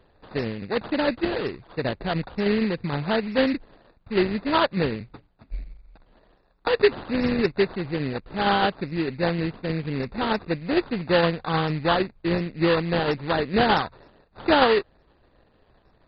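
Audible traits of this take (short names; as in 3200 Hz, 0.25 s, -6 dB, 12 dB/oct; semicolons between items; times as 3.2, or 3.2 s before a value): aliases and images of a low sample rate 2300 Hz, jitter 20%; tremolo saw down 6.5 Hz, depth 35%; MP2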